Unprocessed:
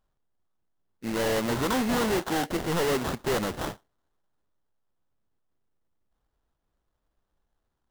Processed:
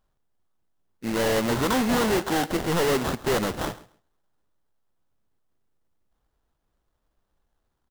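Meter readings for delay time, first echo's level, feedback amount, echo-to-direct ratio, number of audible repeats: 135 ms, −19.5 dB, 17%, −19.5 dB, 2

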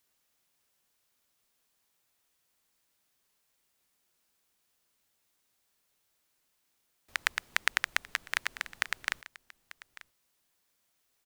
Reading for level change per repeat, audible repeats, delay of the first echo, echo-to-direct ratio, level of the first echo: repeats not evenly spaced, 1, 892 ms, −18.5 dB, −18.5 dB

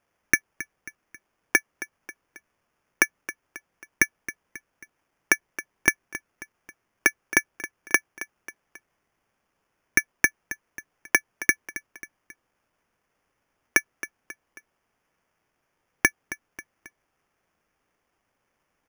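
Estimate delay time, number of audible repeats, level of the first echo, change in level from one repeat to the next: 270 ms, 3, −15.0 dB, −6.5 dB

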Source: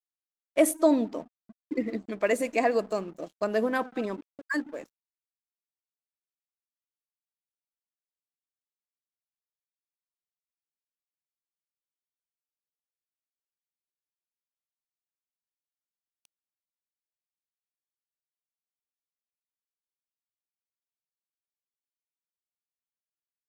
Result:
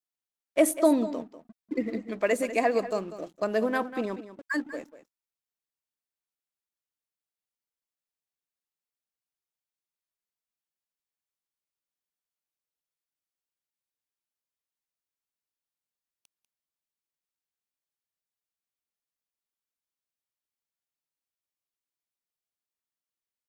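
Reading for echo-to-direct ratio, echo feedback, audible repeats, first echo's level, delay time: −13.5 dB, repeats not evenly spaced, 1, −13.5 dB, 194 ms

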